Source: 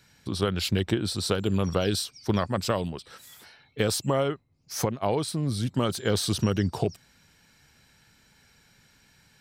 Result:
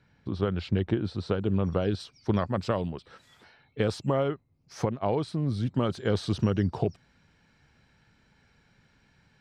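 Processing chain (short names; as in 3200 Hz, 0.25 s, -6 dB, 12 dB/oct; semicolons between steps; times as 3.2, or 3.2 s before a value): tape spacing loss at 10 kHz 35 dB, from 1.99 s at 10 kHz 22 dB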